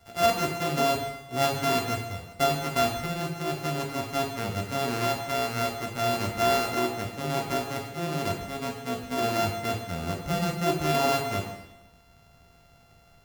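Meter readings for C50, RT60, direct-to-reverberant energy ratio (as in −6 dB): 5.0 dB, 0.95 s, 0.5 dB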